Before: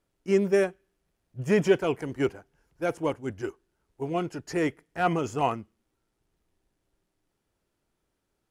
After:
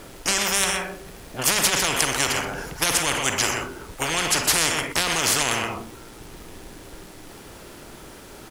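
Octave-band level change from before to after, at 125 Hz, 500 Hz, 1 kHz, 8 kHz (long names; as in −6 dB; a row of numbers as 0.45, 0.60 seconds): 0.0, −4.5, +5.5, +27.0 decibels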